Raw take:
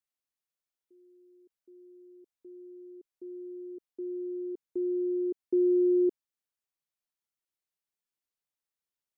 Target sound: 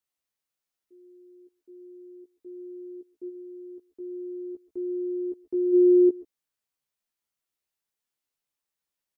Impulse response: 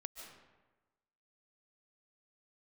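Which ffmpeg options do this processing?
-filter_complex "[0:a]asplit=3[link_01][link_02][link_03];[link_01]afade=type=out:start_time=3.28:duration=0.02[link_04];[link_02]equalizer=frequency=340:width=1:gain=-7.5,afade=type=in:start_time=3.28:duration=0.02,afade=type=out:start_time=5.72:duration=0.02[link_05];[link_03]afade=type=in:start_time=5.72:duration=0.02[link_06];[link_04][link_05][link_06]amix=inputs=3:normalize=0,asplit=2[link_07][link_08];[link_08]adelay=14,volume=-4dB[link_09];[link_07][link_09]amix=inputs=2:normalize=0[link_10];[1:a]atrim=start_sample=2205,atrim=end_sample=6174[link_11];[link_10][link_11]afir=irnorm=-1:irlink=0,volume=7.5dB"

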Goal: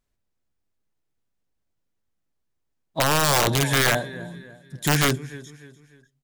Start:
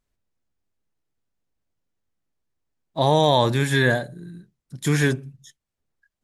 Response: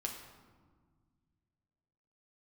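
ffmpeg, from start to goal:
-af "aecho=1:1:298|596|894:0.126|0.0491|0.0191,aeval=exprs='(mod(3.98*val(0)+1,2)-1)/3.98':channel_layout=same"

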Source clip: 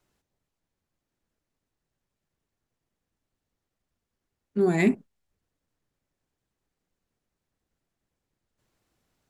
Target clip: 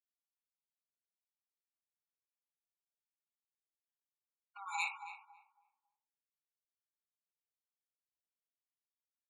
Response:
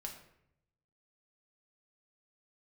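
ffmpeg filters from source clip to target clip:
-filter_complex "[0:a]asuperstop=centerf=640:order=12:qfactor=2.2,bandreject=frequency=57.77:width_type=h:width=4,bandreject=frequency=115.54:width_type=h:width=4,bandreject=frequency=173.31:width_type=h:width=4,bandreject=frequency=231.08:width_type=h:width=4,bandreject=frequency=288.85:width_type=h:width=4,bandreject=frequency=346.62:width_type=h:width=4,bandreject=frequency=404.39:width_type=h:width=4,bandreject=frequency=462.16:width_type=h:width=4,bandreject=frequency=519.93:width_type=h:width=4,bandreject=frequency=577.7:width_type=h:width=4,bandreject=frequency=635.47:width_type=h:width=4,bandreject=frequency=693.24:width_type=h:width=4,bandreject=frequency=751.01:width_type=h:width=4,bandreject=frequency=808.78:width_type=h:width=4,bandreject=frequency=866.55:width_type=h:width=4[link_01];[1:a]atrim=start_sample=2205,atrim=end_sample=4410[link_02];[link_01][link_02]afir=irnorm=-1:irlink=0,acompressor=threshold=-38dB:ratio=5,afftfilt=real='re*gte(hypot(re,im),0.000794)':imag='im*gte(hypot(re,im),0.000794)':win_size=1024:overlap=0.75,asplit=2[link_03][link_04];[link_04]adelay=275,lowpass=frequency=930:poles=1,volume=-6dB,asplit=2[link_05][link_06];[link_06]adelay=275,lowpass=frequency=930:poles=1,volume=0.31,asplit=2[link_07][link_08];[link_08]adelay=275,lowpass=frequency=930:poles=1,volume=0.31,asplit=2[link_09][link_10];[link_10]adelay=275,lowpass=frequency=930:poles=1,volume=0.31[link_11];[link_03][link_05][link_07][link_09][link_11]amix=inputs=5:normalize=0,afftfilt=real='re*eq(mod(floor(b*sr/1024/720),2),1)':imag='im*eq(mod(floor(b*sr/1024/720),2),1)':win_size=1024:overlap=0.75,volume=17dB"

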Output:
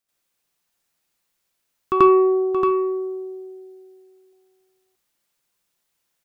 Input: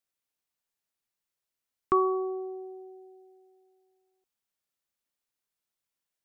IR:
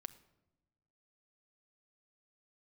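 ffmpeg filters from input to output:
-filter_complex "[0:a]asoftclip=type=tanh:threshold=-16.5dB,aecho=1:1:627:0.447,asplit=2[link_01][link_02];[1:a]atrim=start_sample=2205,atrim=end_sample=3528,adelay=87[link_03];[link_02][link_03]afir=irnorm=-1:irlink=0,volume=12.5dB[link_04];[link_01][link_04]amix=inputs=2:normalize=0,volume=4dB"

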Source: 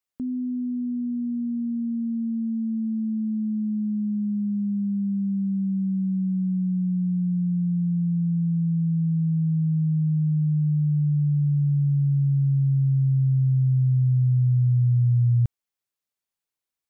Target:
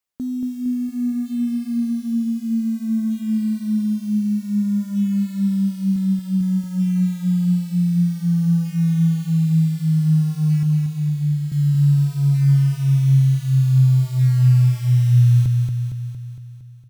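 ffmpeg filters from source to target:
ffmpeg -i in.wav -filter_complex "[0:a]asettb=1/sr,asplit=3[link_01][link_02][link_03];[link_01]atrim=end=5.964[link_04];[link_02]atrim=start=5.96:end=6.41,asetpts=PTS-STARTPTS,afade=type=in:duration=0.004:curve=qsin,afade=type=out:start_time=0.446:duration=0.004:curve=qsin,highpass=frequency=120:poles=1[link_05];[link_03]atrim=start=6.406[link_06];[link_04][link_05]acrossfade=duration=0.004:curve1=hsin:curve2=qsin[link_07];[link_07][link_06]acrossfade=duration=0.004:curve1=qsin:curve2=hsin,asettb=1/sr,asplit=3[link_08][link_09][link_10];[link_08]atrim=end=10.634[link_11];[link_09]atrim=start=10.63:end=11.52,asetpts=PTS-STARTPTS,afade=type=in:duration=0.004:curve=qsin,afade=type=out:start_time=0.886:duration=0.004:curve=qsin,bass=frequency=250:gain=-6,treble=frequency=4000:gain=12[link_12];[link_10]atrim=start=11.516[link_13];[link_11][link_12]acrossfade=duration=0.004:curve1=hsin:curve2=qsin[link_14];[link_14][link_13]acrossfade=duration=0.004:curve1=qsin:curve2=hsin,acrusher=bits=7:mode=log:mix=0:aa=0.000001,aecho=1:1:230|460|690|920|1150|1380|1610|1840:0.596|0.345|0.2|0.116|0.0674|0.0391|0.0227|0.0132,volume=3dB" out.wav

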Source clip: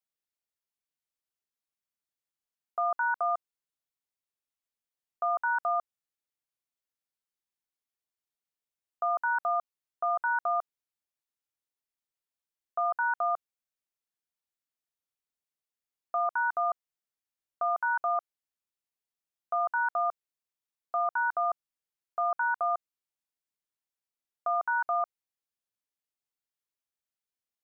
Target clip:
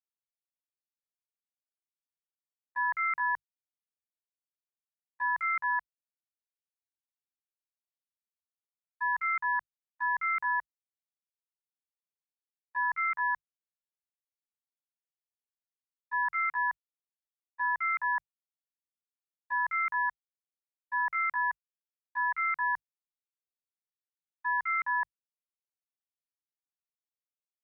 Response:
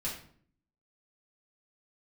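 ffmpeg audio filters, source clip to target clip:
-af "asetrate=62367,aresample=44100,atempo=0.707107,lowshelf=frequency=500:gain=5.5,bandreject=frequency=50:width_type=h:width=6,bandreject=frequency=100:width_type=h:width=6,bandreject=frequency=150:width_type=h:width=6,agate=range=-33dB:threshold=-26dB:ratio=3:detection=peak,volume=-1.5dB"

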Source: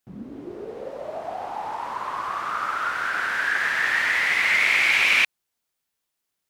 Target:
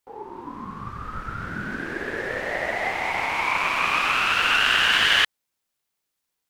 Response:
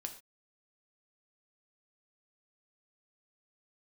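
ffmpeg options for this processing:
-af "aeval=exprs='val(0)*sin(2*PI*640*n/s)':channel_layout=same,volume=3dB"

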